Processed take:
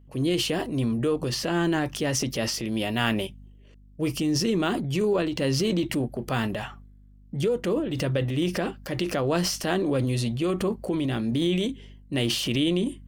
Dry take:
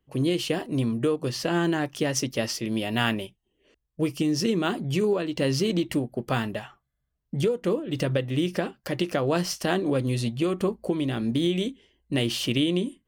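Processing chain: hum 50 Hz, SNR 26 dB; transient shaper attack -3 dB, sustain +7 dB

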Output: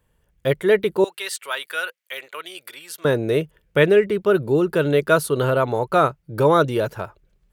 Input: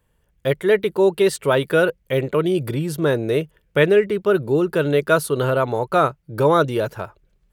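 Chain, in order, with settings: 1.04–3.05 s: high-pass 1.5 kHz 12 dB/octave

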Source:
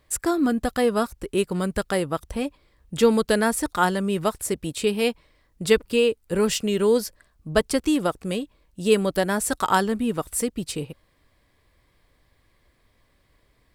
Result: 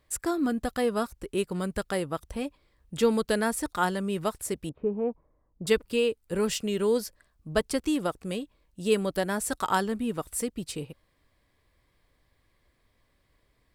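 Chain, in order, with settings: 4.69–5.67 s: low-pass 1.1 kHz 24 dB/octave; trim -5.5 dB

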